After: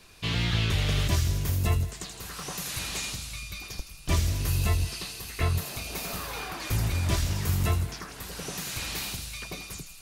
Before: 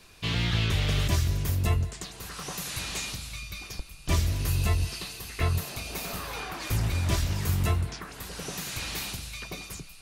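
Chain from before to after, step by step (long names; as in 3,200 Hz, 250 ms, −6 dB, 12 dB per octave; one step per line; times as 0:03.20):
delay with a high-pass on its return 81 ms, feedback 56%, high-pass 4,800 Hz, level −5 dB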